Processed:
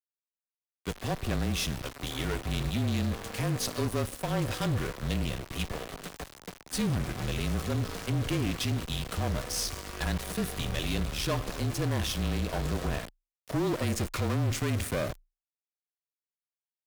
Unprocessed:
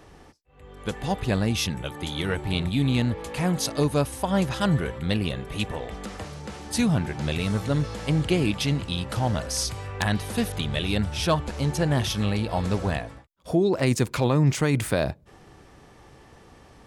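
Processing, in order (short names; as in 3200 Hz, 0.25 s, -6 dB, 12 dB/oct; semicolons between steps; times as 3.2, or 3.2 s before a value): Schroeder reverb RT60 1.8 s, combs from 29 ms, DRR 17 dB; sample gate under -31.5 dBFS; tube stage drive 25 dB, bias 0.6; notch 890 Hz, Q 12; frequency shift -29 Hz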